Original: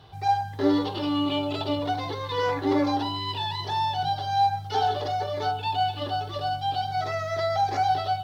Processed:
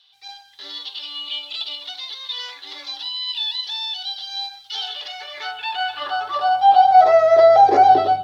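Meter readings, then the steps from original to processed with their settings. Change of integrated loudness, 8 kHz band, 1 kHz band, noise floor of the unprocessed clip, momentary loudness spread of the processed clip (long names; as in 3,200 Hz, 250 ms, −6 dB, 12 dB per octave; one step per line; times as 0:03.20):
+9.0 dB, can't be measured, +8.5 dB, −37 dBFS, 18 LU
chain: spectral tilt −3 dB per octave
automatic gain control gain up to 6 dB
high-pass filter sweep 3,600 Hz → 320 Hz, 0:04.66–0:08.12
level +3 dB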